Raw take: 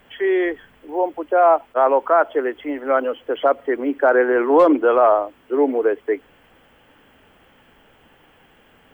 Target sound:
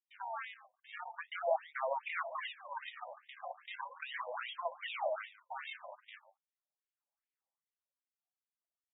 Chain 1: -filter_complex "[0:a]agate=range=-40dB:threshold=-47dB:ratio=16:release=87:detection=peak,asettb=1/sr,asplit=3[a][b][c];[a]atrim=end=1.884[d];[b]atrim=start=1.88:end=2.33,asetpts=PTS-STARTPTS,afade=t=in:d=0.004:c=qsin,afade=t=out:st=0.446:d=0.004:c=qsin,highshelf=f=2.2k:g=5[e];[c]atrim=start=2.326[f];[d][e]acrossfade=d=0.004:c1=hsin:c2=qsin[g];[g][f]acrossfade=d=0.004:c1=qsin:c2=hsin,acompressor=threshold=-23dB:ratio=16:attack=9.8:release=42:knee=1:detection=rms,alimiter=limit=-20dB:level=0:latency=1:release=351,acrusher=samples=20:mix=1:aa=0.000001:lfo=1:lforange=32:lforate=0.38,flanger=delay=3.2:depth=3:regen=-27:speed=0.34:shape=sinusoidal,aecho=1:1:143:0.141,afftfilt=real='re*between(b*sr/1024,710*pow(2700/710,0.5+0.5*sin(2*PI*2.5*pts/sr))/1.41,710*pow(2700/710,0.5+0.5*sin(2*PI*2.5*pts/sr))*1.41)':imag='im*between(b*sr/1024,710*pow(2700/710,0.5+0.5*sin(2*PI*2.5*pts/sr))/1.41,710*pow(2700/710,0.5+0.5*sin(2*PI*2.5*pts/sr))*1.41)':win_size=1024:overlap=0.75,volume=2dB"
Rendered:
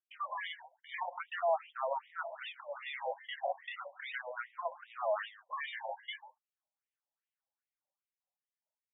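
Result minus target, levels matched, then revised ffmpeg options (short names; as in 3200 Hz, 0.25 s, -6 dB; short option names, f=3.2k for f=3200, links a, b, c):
decimation with a swept rate: distortion -14 dB
-filter_complex "[0:a]agate=range=-40dB:threshold=-47dB:ratio=16:release=87:detection=peak,asettb=1/sr,asplit=3[a][b][c];[a]atrim=end=1.884[d];[b]atrim=start=1.88:end=2.33,asetpts=PTS-STARTPTS,afade=t=in:d=0.004:c=qsin,afade=t=out:st=0.446:d=0.004:c=qsin,highshelf=f=2.2k:g=5[e];[c]atrim=start=2.326[f];[d][e]acrossfade=d=0.004:c1=hsin:c2=qsin[g];[g][f]acrossfade=d=0.004:c1=qsin:c2=hsin,acompressor=threshold=-23dB:ratio=16:attack=9.8:release=42:knee=1:detection=rms,alimiter=limit=-20dB:level=0:latency=1:release=351,acrusher=samples=54:mix=1:aa=0.000001:lfo=1:lforange=86.4:lforate=0.38,flanger=delay=3.2:depth=3:regen=-27:speed=0.34:shape=sinusoidal,aecho=1:1:143:0.141,afftfilt=real='re*between(b*sr/1024,710*pow(2700/710,0.5+0.5*sin(2*PI*2.5*pts/sr))/1.41,710*pow(2700/710,0.5+0.5*sin(2*PI*2.5*pts/sr))*1.41)':imag='im*between(b*sr/1024,710*pow(2700/710,0.5+0.5*sin(2*PI*2.5*pts/sr))/1.41,710*pow(2700/710,0.5+0.5*sin(2*PI*2.5*pts/sr))*1.41)':win_size=1024:overlap=0.75,volume=2dB"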